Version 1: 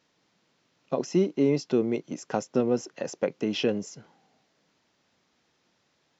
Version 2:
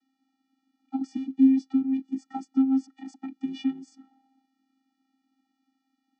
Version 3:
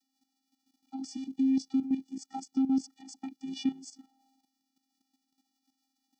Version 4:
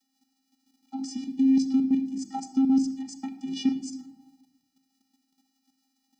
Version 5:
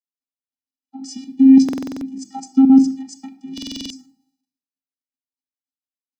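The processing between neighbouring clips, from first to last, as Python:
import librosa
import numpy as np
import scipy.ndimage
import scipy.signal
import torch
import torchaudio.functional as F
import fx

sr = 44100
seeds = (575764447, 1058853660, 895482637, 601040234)

y1 = fx.vocoder(x, sr, bands=16, carrier='square', carrier_hz=266.0)
y1 = y1 * librosa.db_to_amplitude(2.0)
y2 = fx.level_steps(y1, sr, step_db=12)
y2 = fx.curve_eq(y2, sr, hz=(250.0, 460.0, 840.0, 1500.0, 5200.0), db=(0, -4, 3, -6, 15))
y3 = fx.room_shoebox(y2, sr, seeds[0], volume_m3=3100.0, walls='furnished', distance_m=1.4)
y3 = y3 * librosa.db_to_amplitude(4.5)
y4 = fx.buffer_glitch(y3, sr, at_s=(1.64, 3.53), block=2048, repeats=7)
y4 = fx.band_widen(y4, sr, depth_pct=100)
y4 = y4 * librosa.db_to_amplitude(3.5)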